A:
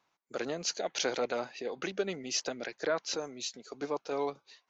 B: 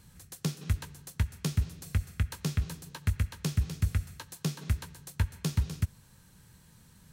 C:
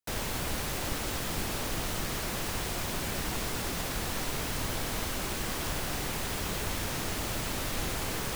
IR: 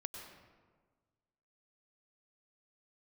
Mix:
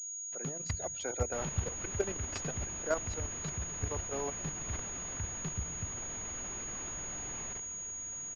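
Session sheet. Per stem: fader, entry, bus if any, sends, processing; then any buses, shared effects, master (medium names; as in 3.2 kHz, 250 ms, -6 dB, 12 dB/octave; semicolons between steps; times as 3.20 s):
-3.0 dB, 0.00 s, send -19 dB, loudest bins only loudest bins 64; three bands expanded up and down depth 100%
-7.5 dB, 0.00 s, send -9 dB, gate -46 dBFS, range -27 dB
4.73 s -2.5 dB -> 5.22 s -10.5 dB -> 7.46 s -10.5 dB -> 7.84 s -19 dB, 1.25 s, send -12 dB, auto duck -8 dB, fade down 1.90 s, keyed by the first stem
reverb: on, RT60 1.5 s, pre-delay 91 ms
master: level held to a coarse grid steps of 9 dB; class-D stage that switches slowly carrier 6.7 kHz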